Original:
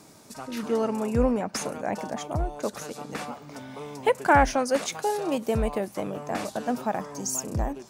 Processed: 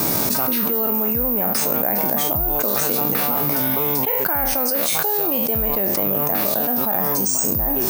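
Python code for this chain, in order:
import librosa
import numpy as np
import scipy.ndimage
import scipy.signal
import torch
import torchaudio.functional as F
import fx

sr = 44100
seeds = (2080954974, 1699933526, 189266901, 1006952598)

y = fx.spec_trails(x, sr, decay_s=0.33)
y = fx.dynamic_eq(y, sr, hz=4200.0, q=3.9, threshold_db=-53.0, ratio=4.0, max_db=4)
y = (np.kron(scipy.signal.resample_poly(y, 1, 3), np.eye(3)[0]) * 3)[:len(y)]
y = fx.env_flatten(y, sr, amount_pct=100)
y = y * 10.0 ** (-10.0 / 20.0)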